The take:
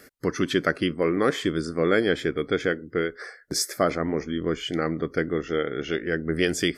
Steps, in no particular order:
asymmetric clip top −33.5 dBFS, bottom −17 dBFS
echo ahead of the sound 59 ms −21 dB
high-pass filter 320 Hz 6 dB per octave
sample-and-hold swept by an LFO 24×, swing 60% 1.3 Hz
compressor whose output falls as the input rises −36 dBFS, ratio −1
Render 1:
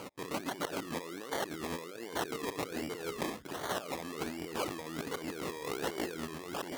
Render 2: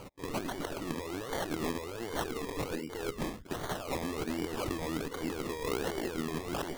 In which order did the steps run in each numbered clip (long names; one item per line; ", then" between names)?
echo ahead of the sound, then sample-and-hold swept by an LFO, then compressor whose output falls as the input rises, then asymmetric clip, then high-pass filter
high-pass filter, then asymmetric clip, then echo ahead of the sound, then sample-and-hold swept by an LFO, then compressor whose output falls as the input rises